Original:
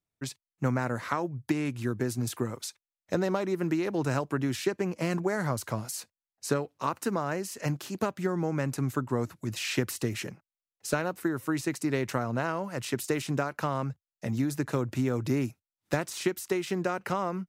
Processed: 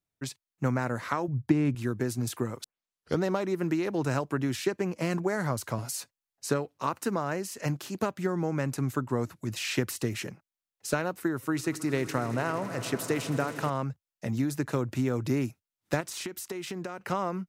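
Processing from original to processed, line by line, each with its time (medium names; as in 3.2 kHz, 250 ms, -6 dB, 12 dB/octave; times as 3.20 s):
1.28–1.75 s: tilt EQ -2.5 dB/octave
2.64 s: tape start 0.58 s
5.78–6.45 s: comb 7.2 ms
11.35–13.70 s: echo with a slow build-up 80 ms, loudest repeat 5, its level -18 dB
16.00–17.08 s: compression, threshold -32 dBFS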